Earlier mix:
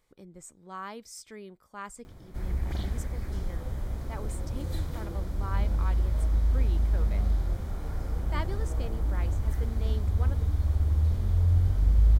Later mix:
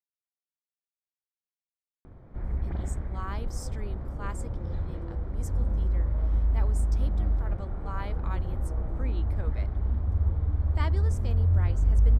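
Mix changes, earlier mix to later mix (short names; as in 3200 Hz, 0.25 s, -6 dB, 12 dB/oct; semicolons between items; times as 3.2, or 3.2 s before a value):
speech: entry +2.45 s; background: add LPF 1500 Hz 12 dB/oct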